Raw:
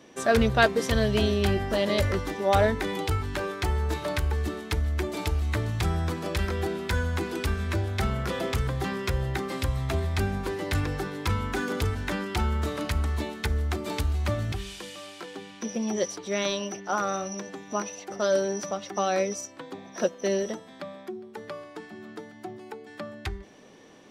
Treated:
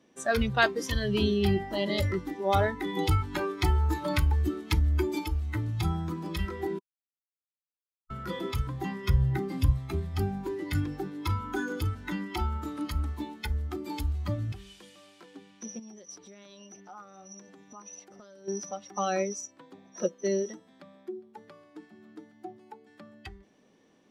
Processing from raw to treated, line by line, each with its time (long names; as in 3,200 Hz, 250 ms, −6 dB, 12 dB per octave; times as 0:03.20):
0:02.97–0:05.19: clip gain +3.5 dB
0:06.79–0:08.10: silence
0:09.09–0:09.73: low-shelf EQ 190 Hz +7 dB
0:15.79–0:18.48: downward compressor, threshold −36 dBFS
whole clip: dynamic equaliser 630 Hz, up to −5 dB, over −42 dBFS, Q 4.1; noise reduction from a noise print of the clip's start 12 dB; parametric band 220 Hz +5 dB 1.1 octaves; level −1.5 dB